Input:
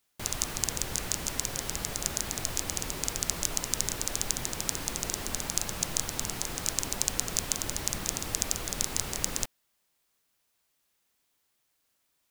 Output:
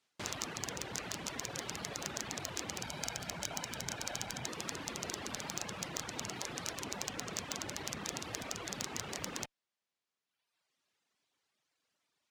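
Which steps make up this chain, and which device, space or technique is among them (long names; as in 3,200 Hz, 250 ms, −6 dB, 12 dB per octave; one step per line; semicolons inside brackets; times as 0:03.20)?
0:02.82–0:04.48: comb filter 1.3 ms, depth 45%
reverb reduction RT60 1.3 s
valve radio (band-pass filter 120–5,800 Hz; tube saturation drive 19 dB, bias 0.4; saturating transformer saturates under 2,700 Hz)
level +1.5 dB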